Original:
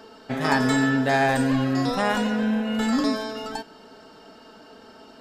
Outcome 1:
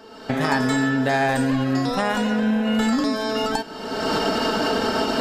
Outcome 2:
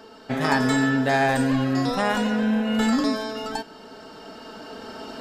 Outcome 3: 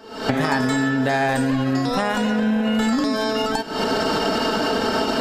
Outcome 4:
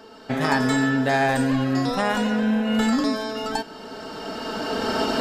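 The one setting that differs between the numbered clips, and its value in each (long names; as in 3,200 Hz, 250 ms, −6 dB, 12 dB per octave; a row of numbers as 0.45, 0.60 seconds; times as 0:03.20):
camcorder AGC, rising by: 37, 5.3, 91, 13 dB per second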